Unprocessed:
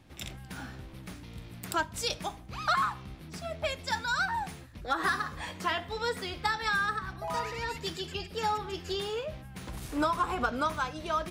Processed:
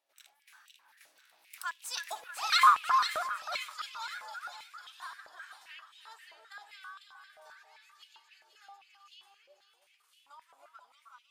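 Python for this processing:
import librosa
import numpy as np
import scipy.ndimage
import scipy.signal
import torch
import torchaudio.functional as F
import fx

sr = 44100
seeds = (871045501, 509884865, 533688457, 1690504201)

y = fx.doppler_pass(x, sr, speed_mps=21, closest_m=3.3, pass_at_s=2.56)
y = fx.tilt_eq(y, sr, slope=3.0)
y = fx.echo_split(y, sr, split_hz=2200.0, low_ms=317, high_ms=498, feedback_pct=52, wet_db=-6.0)
y = fx.filter_held_highpass(y, sr, hz=7.6, low_hz=610.0, high_hz=2800.0)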